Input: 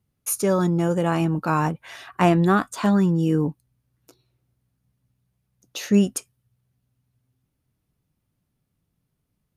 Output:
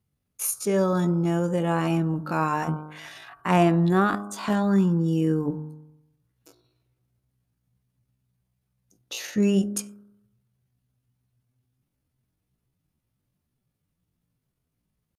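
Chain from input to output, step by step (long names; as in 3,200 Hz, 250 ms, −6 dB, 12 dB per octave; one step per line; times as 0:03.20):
hum removal 51.09 Hz, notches 31
tempo change 0.63×
level −2 dB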